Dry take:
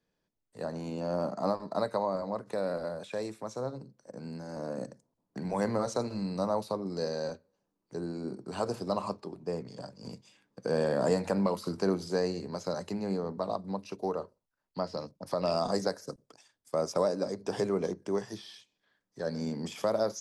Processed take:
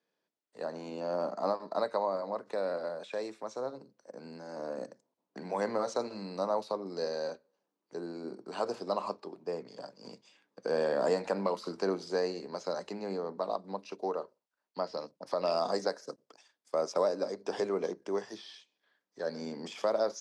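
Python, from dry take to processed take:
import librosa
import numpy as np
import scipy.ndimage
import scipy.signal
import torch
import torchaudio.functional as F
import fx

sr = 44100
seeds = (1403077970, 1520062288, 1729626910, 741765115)

y = fx.bandpass_edges(x, sr, low_hz=320.0, high_hz=6000.0)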